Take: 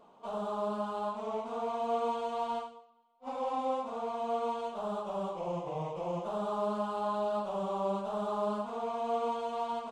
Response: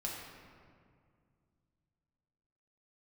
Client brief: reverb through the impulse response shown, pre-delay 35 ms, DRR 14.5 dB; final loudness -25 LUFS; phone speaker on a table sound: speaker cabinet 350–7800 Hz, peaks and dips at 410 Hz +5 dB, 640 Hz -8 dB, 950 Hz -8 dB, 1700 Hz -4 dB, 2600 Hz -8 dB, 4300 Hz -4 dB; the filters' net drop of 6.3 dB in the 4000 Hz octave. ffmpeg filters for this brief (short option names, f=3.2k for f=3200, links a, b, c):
-filter_complex "[0:a]equalizer=f=4k:t=o:g=-4,asplit=2[a][b];[1:a]atrim=start_sample=2205,adelay=35[c];[b][c]afir=irnorm=-1:irlink=0,volume=-16dB[d];[a][d]amix=inputs=2:normalize=0,highpass=f=350:w=0.5412,highpass=f=350:w=1.3066,equalizer=f=410:t=q:w=4:g=5,equalizer=f=640:t=q:w=4:g=-8,equalizer=f=950:t=q:w=4:g=-8,equalizer=f=1.7k:t=q:w=4:g=-4,equalizer=f=2.6k:t=q:w=4:g=-8,equalizer=f=4.3k:t=q:w=4:g=-4,lowpass=f=7.8k:w=0.5412,lowpass=f=7.8k:w=1.3066,volume=14dB"